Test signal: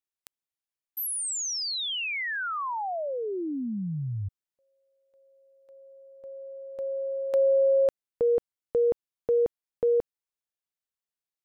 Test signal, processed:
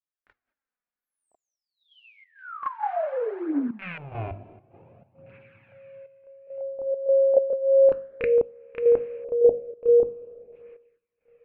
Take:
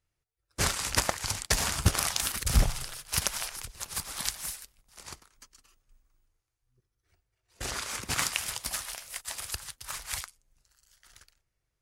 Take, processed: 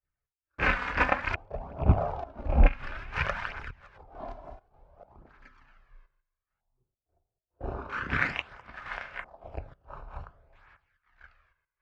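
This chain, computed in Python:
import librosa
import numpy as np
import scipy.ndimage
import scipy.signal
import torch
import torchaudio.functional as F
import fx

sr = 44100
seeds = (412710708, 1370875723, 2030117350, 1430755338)

y = fx.rattle_buzz(x, sr, strikes_db=-32.0, level_db=-14.0)
y = fx.hum_notches(y, sr, base_hz=50, count=5)
y = fx.rev_double_slope(y, sr, seeds[0], early_s=0.33, late_s=4.8, knee_db=-18, drr_db=10.0)
y = fx.filter_lfo_lowpass(y, sr, shape='square', hz=0.38, low_hz=680.0, high_hz=1800.0, q=3.0)
y = fx.step_gate(y, sr, bpm=102, pattern='xx.xxxxxx...xxx.', floor_db=-12.0, edge_ms=4.5)
y = scipy.signal.sosfilt(scipy.signal.butter(2, 8100.0, 'lowpass', fs=sr, output='sos'), y)
y = fx.gate_hold(y, sr, open_db=-53.0, close_db=-56.0, hold_ms=192.0, range_db=-10, attack_ms=0.83, release_ms=20.0)
y = fx.high_shelf(y, sr, hz=4700.0, db=-10.5)
y = fx.chorus_voices(y, sr, voices=2, hz=0.28, base_ms=30, depth_ms=2.1, mix_pct=70)
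y = fx.peak_eq(y, sr, hz=1900.0, db=-7.5, octaves=0.22)
y = y * 10.0 ** (5.0 / 20.0)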